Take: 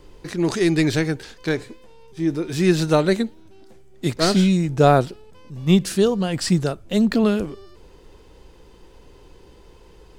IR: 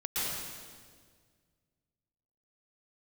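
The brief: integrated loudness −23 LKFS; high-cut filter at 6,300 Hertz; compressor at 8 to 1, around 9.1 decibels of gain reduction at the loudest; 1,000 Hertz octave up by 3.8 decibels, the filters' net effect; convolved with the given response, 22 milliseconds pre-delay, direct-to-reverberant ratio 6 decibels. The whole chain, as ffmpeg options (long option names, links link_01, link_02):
-filter_complex "[0:a]lowpass=6300,equalizer=frequency=1000:width_type=o:gain=6,acompressor=threshold=-17dB:ratio=8,asplit=2[link_01][link_02];[1:a]atrim=start_sample=2205,adelay=22[link_03];[link_02][link_03]afir=irnorm=-1:irlink=0,volume=-13dB[link_04];[link_01][link_04]amix=inputs=2:normalize=0"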